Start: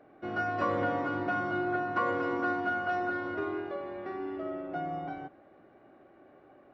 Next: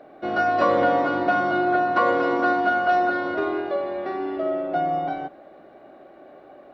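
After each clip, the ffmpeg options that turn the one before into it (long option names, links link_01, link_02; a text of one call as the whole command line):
ffmpeg -i in.wav -af "equalizer=frequency=100:width_type=o:width=0.67:gain=-9,equalizer=frequency=630:width_type=o:width=0.67:gain=7,equalizer=frequency=4000:width_type=o:width=0.67:gain=8,volume=7.5dB" out.wav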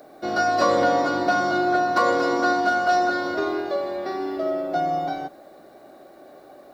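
ffmpeg -i in.wav -af "aexciter=amount=8.8:drive=3.2:freq=4200" out.wav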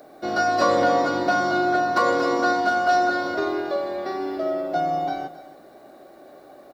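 ffmpeg -i in.wav -af "aecho=1:1:272:0.158" out.wav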